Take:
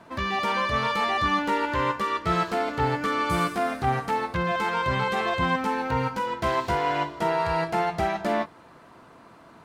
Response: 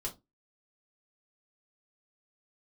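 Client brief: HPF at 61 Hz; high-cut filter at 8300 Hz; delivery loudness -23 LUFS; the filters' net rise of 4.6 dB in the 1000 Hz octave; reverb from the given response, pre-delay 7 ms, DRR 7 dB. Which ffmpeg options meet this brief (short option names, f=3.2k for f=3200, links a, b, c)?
-filter_complex "[0:a]highpass=61,lowpass=8.3k,equalizer=f=1k:t=o:g=5.5,asplit=2[a][b];[1:a]atrim=start_sample=2205,adelay=7[c];[b][c]afir=irnorm=-1:irlink=0,volume=-7dB[d];[a][d]amix=inputs=2:normalize=0,volume=-2dB"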